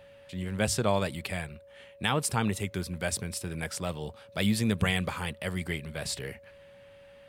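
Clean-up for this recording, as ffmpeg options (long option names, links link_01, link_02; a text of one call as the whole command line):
ffmpeg -i in.wav -af "bandreject=frequency=560:width=30" out.wav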